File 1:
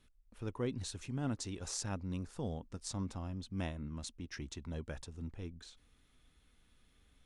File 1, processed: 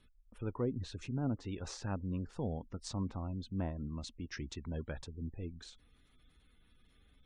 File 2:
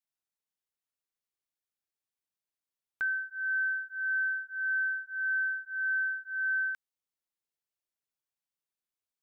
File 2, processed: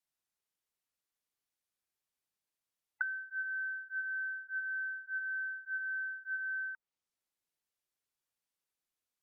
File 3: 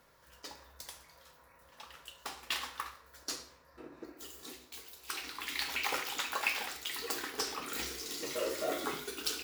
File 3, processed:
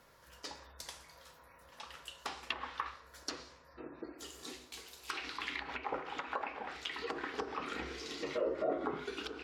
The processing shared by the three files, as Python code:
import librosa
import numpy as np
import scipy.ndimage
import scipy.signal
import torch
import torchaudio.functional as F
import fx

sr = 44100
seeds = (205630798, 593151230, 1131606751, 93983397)

y = fx.spec_gate(x, sr, threshold_db=-30, keep='strong')
y = fx.env_lowpass_down(y, sr, base_hz=910.0, full_db=-32.0)
y = F.gain(torch.from_numpy(y), 2.0).numpy()